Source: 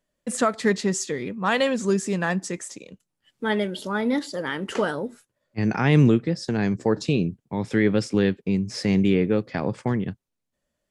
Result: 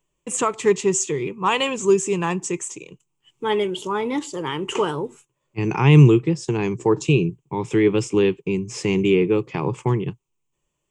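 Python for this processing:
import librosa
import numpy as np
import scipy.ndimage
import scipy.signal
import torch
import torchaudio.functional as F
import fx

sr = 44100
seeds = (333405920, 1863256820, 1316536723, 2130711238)

y = fx.ripple_eq(x, sr, per_octave=0.7, db=14)
y = y * 10.0 ** (1.0 / 20.0)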